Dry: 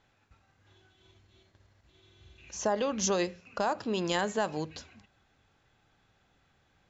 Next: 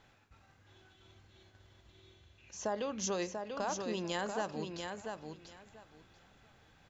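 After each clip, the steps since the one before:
reversed playback
upward compression, threshold −46 dBFS
reversed playback
repeating echo 689 ms, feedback 18%, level −5.5 dB
level −7 dB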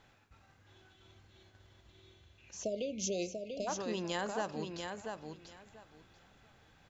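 time-frequency box erased 0:02.63–0:03.68, 750–2,100 Hz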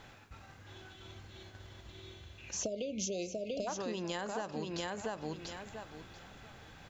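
downward compressor 16 to 1, threshold −44 dBFS, peak gain reduction 14 dB
level +10 dB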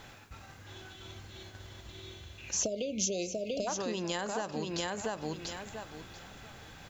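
high-shelf EQ 6,000 Hz +7.5 dB
level +3 dB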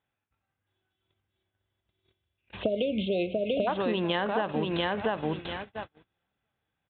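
noise gate −41 dBFS, range −39 dB
downsampling to 8,000 Hz
high-pass filter 51 Hz
level +7 dB

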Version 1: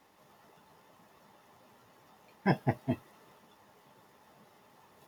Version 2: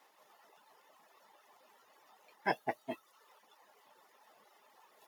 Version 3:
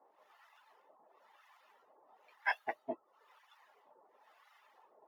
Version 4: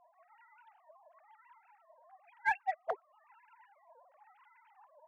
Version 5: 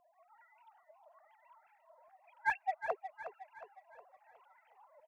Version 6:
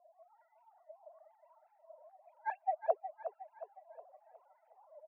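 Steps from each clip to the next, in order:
reverb reduction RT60 0.8 s; high-pass filter 510 Hz 12 dB per octave
bass and treble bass −13 dB, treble −13 dB; two-band tremolo in antiphase 1 Hz, depth 100%, crossover 930 Hz; level +5 dB
three sine waves on the formant tracks; in parallel at −10 dB: hard clipping −39 dBFS, distortion −4 dB; on the sum: level +2.5 dB
auto-filter notch saw up 2.4 Hz 850–2,800 Hz; repeating echo 363 ms, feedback 47%, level −10.5 dB
resonant band-pass 620 Hz, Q 5.2; level +9 dB

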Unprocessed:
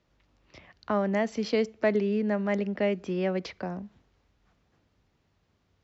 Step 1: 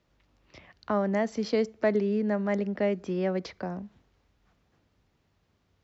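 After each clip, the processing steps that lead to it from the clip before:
dynamic equaliser 2,700 Hz, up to −6 dB, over −52 dBFS, Q 2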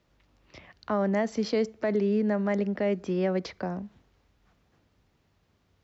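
brickwall limiter −19.5 dBFS, peak gain reduction 6.5 dB
level +2 dB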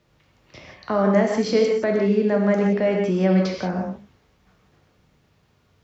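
reverb whose tail is shaped and stops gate 200 ms flat, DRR −0.5 dB
level +4.5 dB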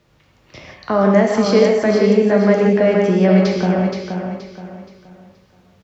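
repeating echo 474 ms, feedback 34%, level −6 dB
level +5 dB

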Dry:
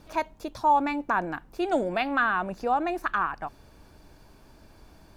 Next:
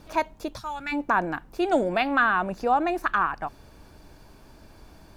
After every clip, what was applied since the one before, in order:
gain on a spectral selection 0:00.59–0:00.92, 220–1,200 Hz −17 dB
level +3 dB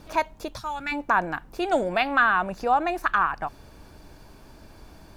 dynamic equaliser 290 Hz, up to −6 dB, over −38 dBFS, Q 0.88
level +2 dB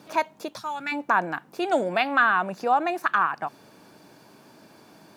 high-pass filter 150 Hz 24 dB per octave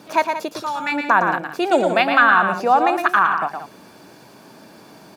mains-hum notches 50/100/150 Hz
loudspeakers that aren't time-aligned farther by 39 metres −6 dB, 61 metres −12 dB
level +6 dB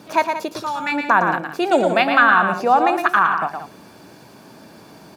low-shelf EQ 100 Hz +10 dB
on a send at −19 dB: convolution reverb RT60 0.65 s, pre-delay 18 ms

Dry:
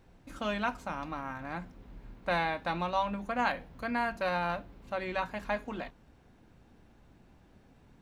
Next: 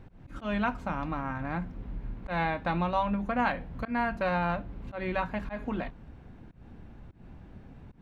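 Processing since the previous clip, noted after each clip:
bass and treble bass +7 dB, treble −12 dB
volume swells 144 ms
in parallel at +0.5 dB: downward compressor, threshold −40 dBFS, peak gain reduction 15 dB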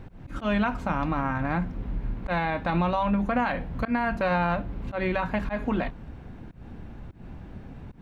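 brickwall limiter −23.5 dBFS, peak gain reduction 8.5 dB
level +7 dB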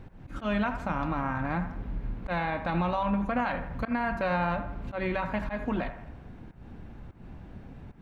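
delay with a band-pass on its return 82 ms, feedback 49%, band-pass 1,100 Hz, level −9 dB
level −3.5 dB

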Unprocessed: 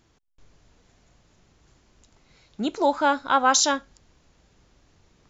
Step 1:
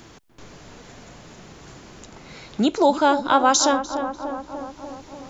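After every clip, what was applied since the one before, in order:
dynamic equaliser 1,900 Hz, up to −7 dB, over −35 dBFS, Q 0.86
on a send: feedback echo with a low-pass in the loop 295 ms, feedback 60%, low-pass 1,500 Hz, level −10 dB
on the sum: multiband upward and downward compressor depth 40%
level +7 dB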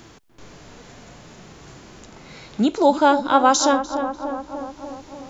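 harmonic and percussive parts rebalanced harmonic +6 dB
level −3.5 dB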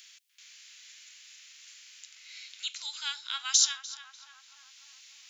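inverse Chebyshev high-pass filter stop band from 510 Hz, stop band 70 dB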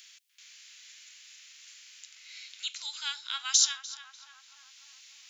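no processing that can be heard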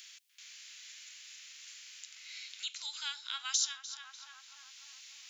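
downward compressor 1.5 to 1, threshold −45 dBFS, peak gain reduction 9.5 dB
level +1 dB

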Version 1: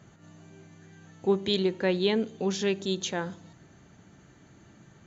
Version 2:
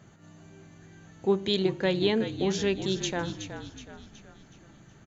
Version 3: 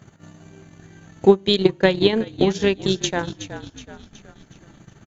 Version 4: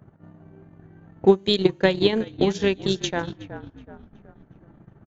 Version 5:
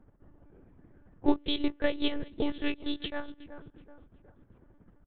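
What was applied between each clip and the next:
echo with shifted repeats 371 ms, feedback 47%, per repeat −46 Hz, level −9.5 dB
transient designer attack +9 dB, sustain −11 dB; level +5 dB
low-pass that shuts in the quiet parts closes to 1,000 Hz, open at −14.5 dBFS; tape wow and flutter 24 cents; level −2.5 dB
one-pitch LPC vocoder at 8 kHz 290 Hz; level −8 dB

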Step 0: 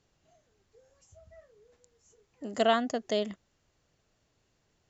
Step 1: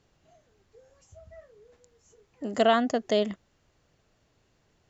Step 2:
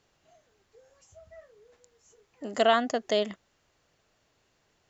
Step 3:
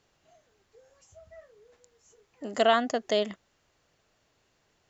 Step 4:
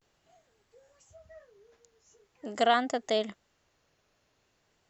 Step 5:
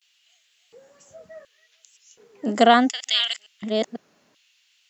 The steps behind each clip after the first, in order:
high-shelf EQ 5,000 Hz −6.5 dB; in parallel at −1 dB: brickwall limiter −20.5 dBFS, peak gain reduction 7.5 dB
low-shelf EQ 350 Hz −9.5 dB; level +1.5 dB
no processing that can be heard
pitch vibrato 0.43 Hz 75 cents; level −2 dB
delay that plays each chunk backwards 495 ms, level −5.5 dB; auto-filter high-pass square 0.69 Hz 200–2,900 Hz; level +8.5 dB

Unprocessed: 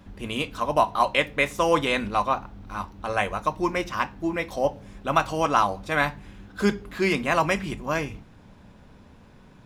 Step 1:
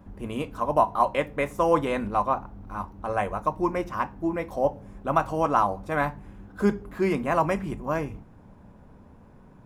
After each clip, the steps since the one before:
drawn EQ curve 970 Hz 0 dB, 3,800 Hz −15 dB, 11,000 Hz −5 dB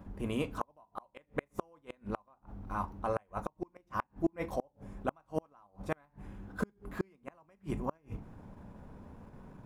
in parallel at +0.5 dB: output level in coarse steps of 13 dB
on the sum: gate with flip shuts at −13 dBFS, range −38 dB
level −5.5 dB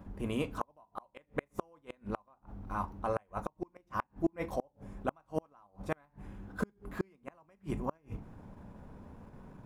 no processing that can be heard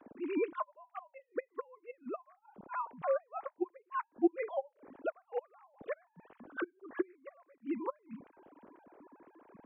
three sine waves on the formant tracks

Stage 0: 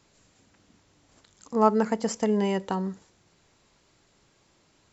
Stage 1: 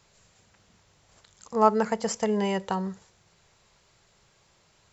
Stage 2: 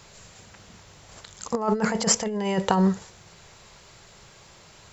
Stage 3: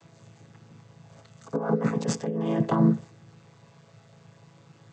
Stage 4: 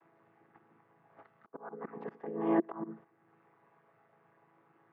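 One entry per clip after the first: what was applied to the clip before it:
parametric band 280 Hz −14 dB 0.55 octaves; level +2 dB
brickwall limiter −17.5 dBFS, peak gain reduction 11 dB; compressor whose output falls as the input rises −30 dBFS, ratio −0.5; level +8.5 dB
channel vocoder with a chord as carrier major triad, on A2
volume swells 501 ms; loudspeaker in its box 330–2,100 Hz, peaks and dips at 350 Hz +8 dB, 540 Hz −5 dB, 820 Hz +5 dB, 1,200 Hz +4 dB, 1,800 Hz +3 dB; noise gate −53 dBFS, range −9 dB

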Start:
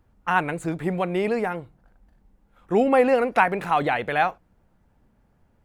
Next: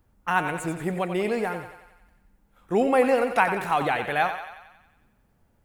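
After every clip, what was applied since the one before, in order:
high-shelf EQ 6,600 Hz +10 dB
on a send: feedback echo with a high-pass in the loop 91 ms, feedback 60%, high-pass 420 Hz, level −8.5 dB
on the sum: level −2.5 dB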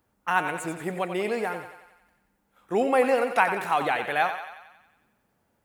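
high-pass filter 300 Hz 6 dB per octave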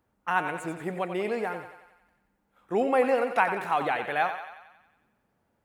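high-shelf EQ 3,800 Hz −7.5 dB
level −1.5 dB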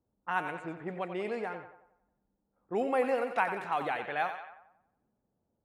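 low-pass that shuts in the quiet parts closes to 630 Hz, open at −23 dBFS
level −5.5 dB

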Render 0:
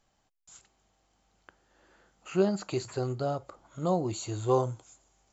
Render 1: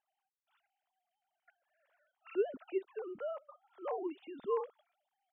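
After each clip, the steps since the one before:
three sine waves on the formant tracks
level −9 dB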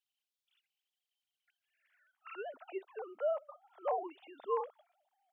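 high-pass filter sweep 3,300 Hz → 650 Hz, 0:01.54–0:02.69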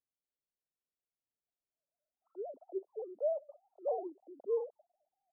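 Butterworth low-pass 650 Hz 36 dB per octave
level +2.5 dB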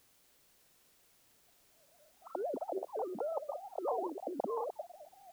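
every bin compressed towards the loudest bin 4 to 1
level +3 dB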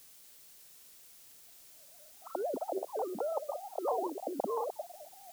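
high-shelf EQ 3,000 Hz +11 dB
level +2 dB

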